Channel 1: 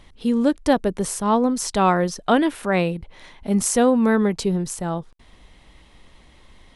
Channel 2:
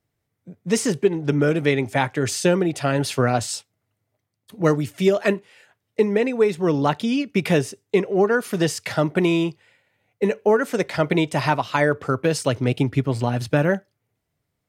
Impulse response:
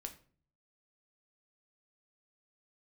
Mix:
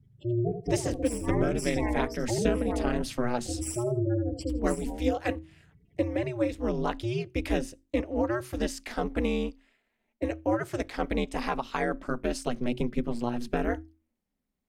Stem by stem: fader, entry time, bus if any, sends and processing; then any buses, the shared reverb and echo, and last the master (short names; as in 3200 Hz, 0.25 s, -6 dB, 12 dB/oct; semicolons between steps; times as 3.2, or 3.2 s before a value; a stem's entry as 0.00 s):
-6.0 dB, 0.00 s, no send, echo send -8 dB, minimum comb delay 0.39 ms; limiter -13 dBFS, peak gain reduction 7 dB; spectral gate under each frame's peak -15 dB strong
-7.5 dB, 0.00 s, no send, no echo send, low shelf 130 Hz +10 dB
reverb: off
echo: feedback echo 81 ms, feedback 18%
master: notches 50/100/150/200/250 Hz; ring modulator 120 Hz